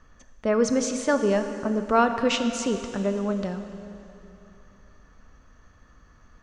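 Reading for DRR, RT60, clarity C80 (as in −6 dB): 7.5 dB, 2.9 s, 9.0 dB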